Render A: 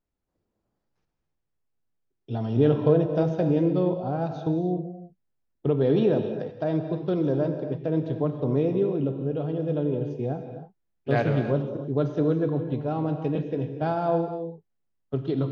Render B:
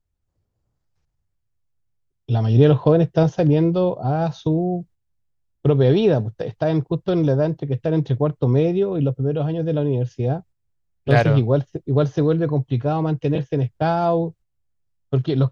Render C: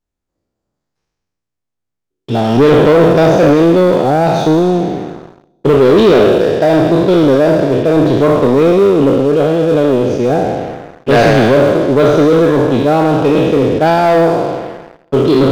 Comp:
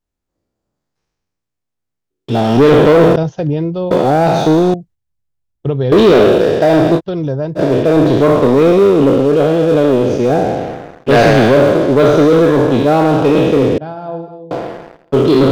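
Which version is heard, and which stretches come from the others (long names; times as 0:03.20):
C
0:03.16–0:03.91: punch in from B
0:04.74–0:05.92: punch in from B
0:06.98–0:07.58: punch in from B, crossfade 0.06 s
0:13.78–0:14.51: punch in from A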